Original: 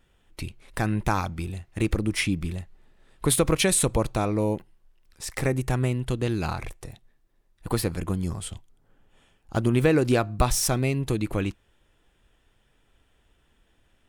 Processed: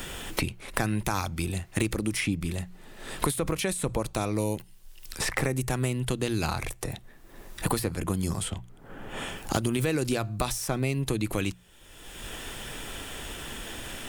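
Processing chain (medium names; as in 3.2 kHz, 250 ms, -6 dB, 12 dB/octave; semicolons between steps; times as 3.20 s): treble shelf 4 kHz +10.5 dB; hum notches 60/120/180 Hz; peak limiter -13 dBFS, peak gain reduction 11.5 dB; three bands compressed up and down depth 100%; trim -2.5 dB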